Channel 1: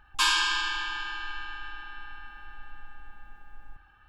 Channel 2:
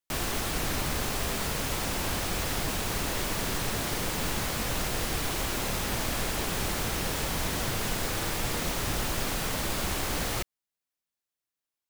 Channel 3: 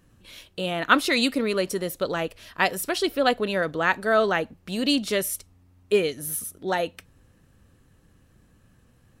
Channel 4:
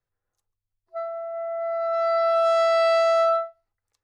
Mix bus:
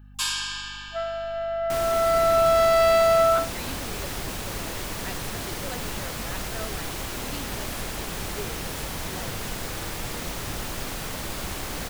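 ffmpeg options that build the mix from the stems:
ffmpeg -i stem1.wav -i stem2.wav -i stem3.wav -i stem4.wav -filter_complex "[0:a]crystalizer=i=4:c=0,volume=-11dB[link_01];[1:a]adelay=1600,volume=-2dB[link_02];[2:a]adelay=2450,volume=-18dB[link_03];[3:a]volume=1dB[link_04];[link_01][link_02][link_03][link_04]amix=inputs=4:normalize=0,aeval=exprs='val(0)+0.00501*(sin(2*PI*50*n/s)+sin(2*PI*2*50*n/s)/2+sin(2*PI*3*50*n/s)/3+sin(2*PI*4*50*n/s)/4+sin(2*PI*5*50*n/s)/5)':channel_layout=same" out.wav

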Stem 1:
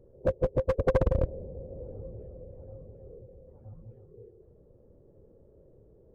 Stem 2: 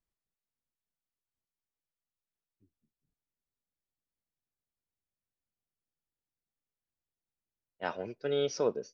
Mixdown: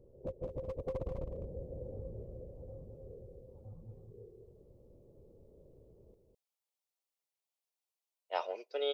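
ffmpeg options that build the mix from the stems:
ffmpeg -i stem1.wav -i stem2.wav -filter_complex "[0:a]alimiter=level_in=5dB:limit=-24dB:level=0:latency=1:release=69,volume=-5dB,volume=-3.5dB,asplit=2[link_01][link_02];[link_02]volume=-6.5dB[link_03];[1:a]highpass=frequency=500:width=0.5412,highpass=frequency=500:width=1.3066,adelay=500,volume=2.5dB[link_04];[link_03]aecho=0:1:206:1[link_05];[link_01][link_04][link_05]amix=inputs=3:normalize=0,equalizer=frequency=1600:width_type=o:width=0.43:gain=-14.5" out.wav

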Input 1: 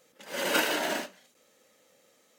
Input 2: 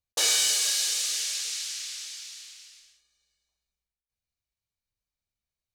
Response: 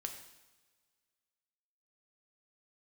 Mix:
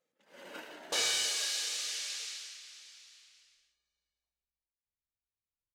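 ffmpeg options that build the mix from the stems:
-filter_complex "[0:a]lowpass=frequency=4000:poles=1,volume=-19.5dB[link_01];[1:a]lowpass=frequency=2900:poles=1,adelay=750,volume=-2dB,afade=type=out:start_time=2.21:duration=0.39:silence=0.473151[link_02];[link_01][link_02]amix=inputs=2:normalize=0"

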